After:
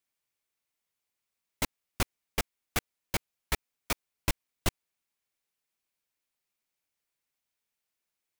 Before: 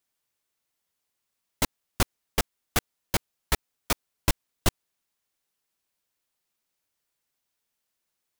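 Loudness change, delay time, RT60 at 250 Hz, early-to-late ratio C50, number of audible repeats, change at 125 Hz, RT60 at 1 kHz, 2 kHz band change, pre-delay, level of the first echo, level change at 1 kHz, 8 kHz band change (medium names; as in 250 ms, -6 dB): -5.0 dB, no echo, no reverb, no reverb, no echo, -5.5 dB, no reverb, -3.5 dB, no reverb, no echo, -5.5 dB, -5.5 dB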